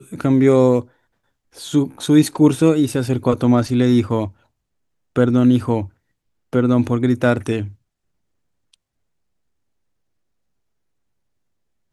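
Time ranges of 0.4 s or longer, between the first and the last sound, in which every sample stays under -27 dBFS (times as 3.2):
0.81–1.59
4.28–5.16
5.85–6.53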